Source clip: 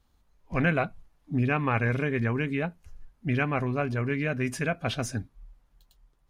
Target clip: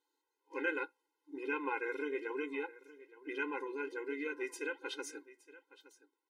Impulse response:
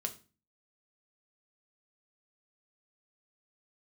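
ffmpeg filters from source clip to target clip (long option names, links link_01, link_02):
-af "flanger=delay=0.8:depth=9.5:regen=-77:speed=1.2:shape=sinusoidal,aecho=1:1:868:0.119,afftfilt=real='re*eq(mod(floor(b*sr/1024/270),2),1)':imag='im*eq(mod(floor(b*sr/1024/270),2),1)':win_size=1024:overlap=0.75,volume=-1.5dB"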